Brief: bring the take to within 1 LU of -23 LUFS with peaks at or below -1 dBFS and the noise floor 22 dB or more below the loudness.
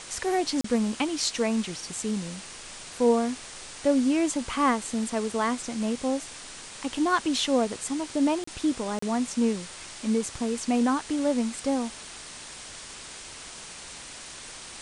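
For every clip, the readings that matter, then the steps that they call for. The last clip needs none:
dropouts 3; longest dropout 34 ms; noise floor -43 dBFS; noise floor target -49 dBFS; loudness -27.0 LUFS; peak level -11.5 dBFS; loudness target -23.0 LUFS
-> interpolate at 0.61/8.44/8.99 s, 34 ms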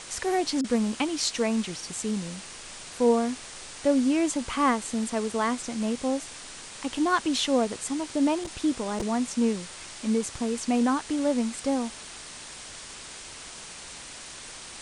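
dropouts 0; noise floor -43 dBFS; noise floor target -49 dBFS
-> noise reduction 6 dB, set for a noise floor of -43 dBFS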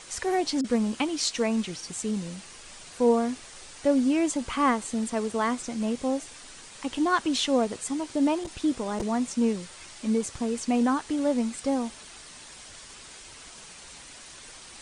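noise floor -47 dBFS; noise floor target -50 dBFS
-> noise reduction 6 dB, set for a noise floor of -47 dBFS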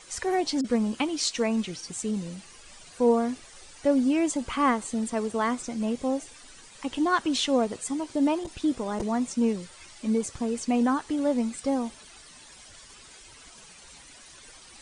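noise floor -50 dBFS; loudness -27.5 LUFS; peak level -12.0 dBFS; loudness target -23.0 LUFS
-> trim +4.5 dB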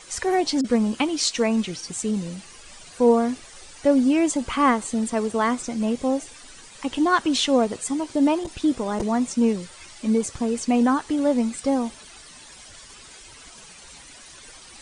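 loudness -23.0 LUFS; peak level -7.5 dBFS; noise floor -46 dBFS

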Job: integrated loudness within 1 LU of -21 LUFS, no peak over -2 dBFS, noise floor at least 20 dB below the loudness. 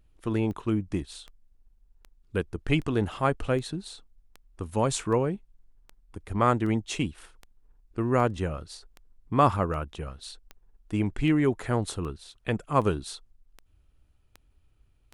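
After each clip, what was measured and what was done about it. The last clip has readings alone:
clicks found 20; loudness -28.5 LUFS; peak level -8.5 dBFS; loudness target -21.0 LUFS
-> de-click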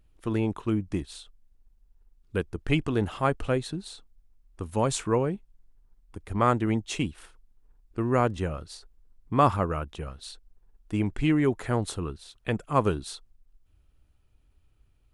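clicks found 0; loudness -28.5 LUFS; peak level -8.5 dBFS; loudness target -21.0 LUFS
-> trim +7.5 dB; peak limiter -2 dBFS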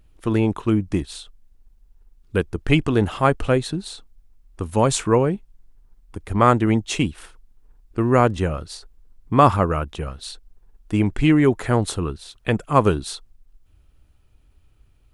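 loudness -21.0 LUFS; peak level -2.0 dBFS; noise floor -57 dBFS

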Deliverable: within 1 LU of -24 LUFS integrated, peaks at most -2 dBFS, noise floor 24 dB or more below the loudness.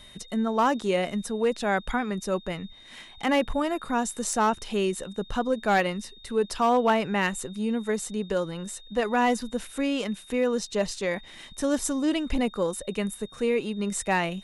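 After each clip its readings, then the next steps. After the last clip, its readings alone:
clipped samples 0.3%; clipping level -15.5 dBFS; steady tone 3.7 kHz; tone level -49 dBFS; loudness -27.0 LUFS; peak level -15.5 dBFS; loudness target -24.0 LUFS
-> clip repair -15.5 dBFS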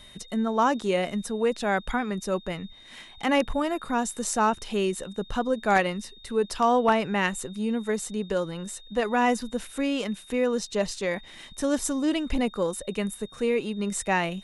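clipped samples 0.0%; steady tone 3.7 kHz; tone level -49 dBFS
-> band-stop 3.7 kHz, Q 30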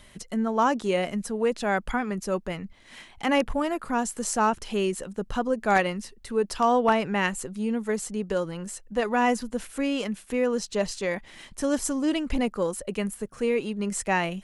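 steady tone not found; loudness -27.0 LUFS; peak level -7.5 dBFS; loudness target -24.0 LUFS
-> trim +3 dB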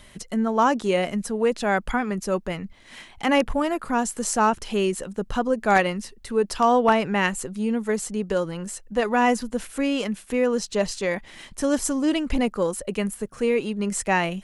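loudness -24.0 LUFS; peak level -4.5 dBFS; noise floor -50 dBFS

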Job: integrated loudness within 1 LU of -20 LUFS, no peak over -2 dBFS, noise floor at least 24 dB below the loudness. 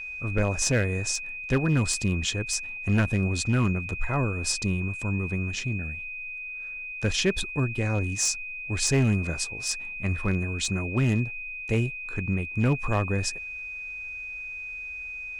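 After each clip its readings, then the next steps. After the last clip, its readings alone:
clipped samples 0.5%; clipping level -16.0 dBFS; steady tone 2.5 kHz; tone level -34 dBFS; loudness -27.5 LUFS; peak level -16.0 dBFS; loudness target -20.0 LUFS
-> clip repair -16 dBFS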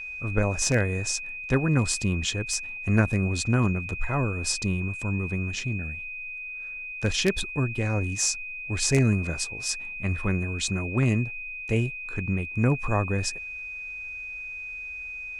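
clipped samples 0.0%; steady tone 2.5 kHz; tone level -34 dBFS
-> band-stop 2.5 kHz, Q 30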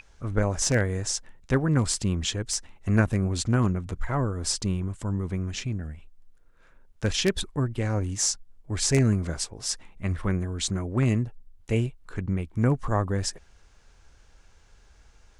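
steady tone not found; loudness -27.0 LUFS; peak level -7.0 dBFS; loudness target -20.0 LUFS
-> trim +7 dB; peak limiter -2 dBFS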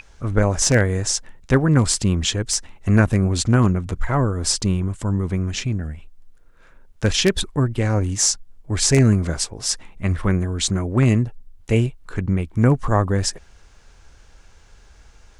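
loudness -20.5 LUFS; peak level -2.0 dBFS; noise floor -49 dBFS

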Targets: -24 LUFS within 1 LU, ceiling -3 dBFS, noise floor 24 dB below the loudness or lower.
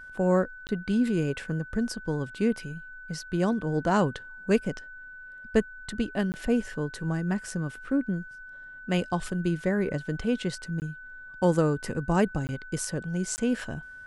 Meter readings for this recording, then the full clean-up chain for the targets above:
dropouts 5; longest dropout 19 ms; steady tone 1.5 kHz; tone level -42 dBFS; loudness -29.0 LUFS; peak level -10.0 dBFS; loudness target -24.0 LUFS
-> interpolate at 0.67/6.32/10.80/12.47/13.36 s, 19 ms; band-stop 1.5 kHz, Q 30; trim +5 dB

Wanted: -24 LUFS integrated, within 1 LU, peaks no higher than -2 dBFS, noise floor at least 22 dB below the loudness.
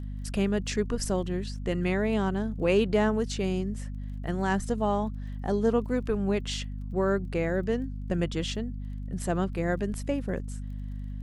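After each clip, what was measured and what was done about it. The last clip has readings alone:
tick rate 21 per s; hum 50 Hz; highest harmonic 250 Hz; hum level -33 dBFS; loudness -29.5 LUFS; peak level -11.5 dBFS; loudness target -24.0 LUFS
-> de-click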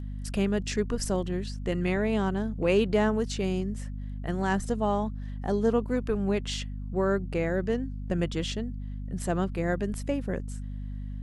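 tick rate 0.089 per s; hum 50 Hz; highest harmonic 250 Hz; hum level -33 dBFS
-> de-hum 50 Hz, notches 5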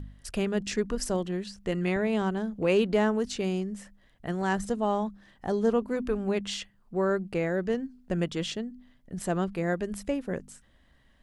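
hum not found; loudness -29.5 LUFS; peak level -12.0 dBFS; loudness target -24.0 LUFS
-> trim +5.5 dB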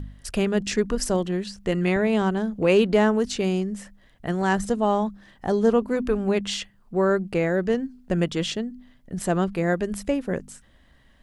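loudness -24.0 LUFS; peak level -6.5 dBFS; noise floor -57 dBFS

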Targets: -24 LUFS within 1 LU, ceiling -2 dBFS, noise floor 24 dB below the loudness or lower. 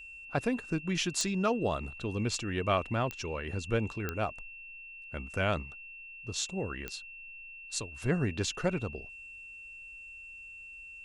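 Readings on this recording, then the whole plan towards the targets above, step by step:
clicks found 4; steady tone 2.7 kHz; tone level -45 dBFS; loudness -33.5 LUFS; peak level -13.5 dBFS; loudness target -24.0 LUFS
-> de-click; band-stop 2.7 kHz, Q 30; trim +9.5 dB

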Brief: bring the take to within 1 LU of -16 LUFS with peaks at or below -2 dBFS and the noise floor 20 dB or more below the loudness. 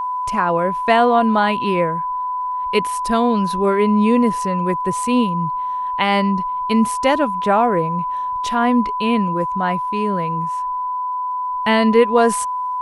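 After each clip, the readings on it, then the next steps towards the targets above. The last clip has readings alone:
tick rate 22 per s; steady tone 1 kHz; tone level -20 dBFS; loudness -18.0 LUFS; peak level -1.5 dBFS; loudness target -16.0 LUFS
-> de-click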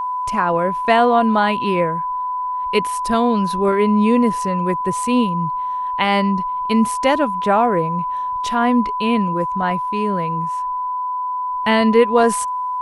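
tick rate 0 per s; steady tone 1 kHz; tone level -20 dBFS
-> band-stop 1 kHz, Q 30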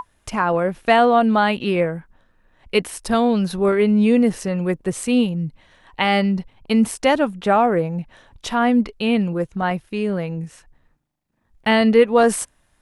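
steady tone not found; loudness -19.0 LUFS; peak level -2.5 dBFS; loudness target -16.0 LUFS
-> trim +3 dB; peak limiter -2 dBFS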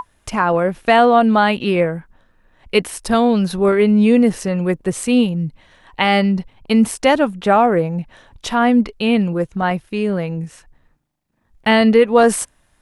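loudness -16.0 LUFS; peak level -2.0 dBFS; noise floor -61 dBFS

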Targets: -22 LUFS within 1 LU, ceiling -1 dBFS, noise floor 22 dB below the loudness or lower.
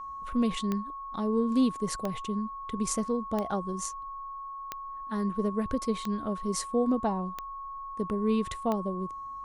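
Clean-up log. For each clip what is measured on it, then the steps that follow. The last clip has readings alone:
clicks found 7; steady tone 1.1 kHz; tone level -37 dBFS; loudness -31.5 LUFS; peak level -15.0 dBFS; loudness target -22.0 LUFS
-> de-click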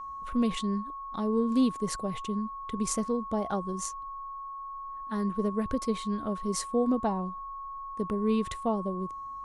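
clicks found 0; steady tone 1.1 kHz; tone level -37 dBFS
-> band-stop 1.1 kHz, Q 30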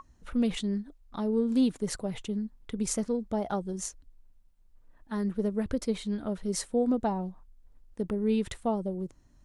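steady tone not found; loudness -31.0 LUFS; peak level -16.0 dBFS; loudness target -22.0 LUFS
-> trim +9 dB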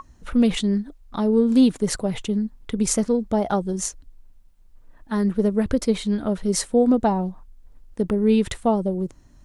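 loudness -22.0 LUFS; peak level -7.0 dBFS; noise floor -51 dBFS

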